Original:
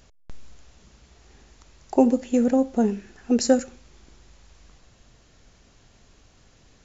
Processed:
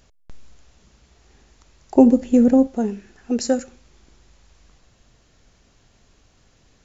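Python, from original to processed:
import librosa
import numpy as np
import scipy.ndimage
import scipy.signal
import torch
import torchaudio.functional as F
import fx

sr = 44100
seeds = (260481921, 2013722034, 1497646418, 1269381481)

y = fx.low_shelf(x, sr, hz=480.0, db=10.5, at=(1.95, 2.67))
y = y * librosa.db_to_amplitude(-1.5)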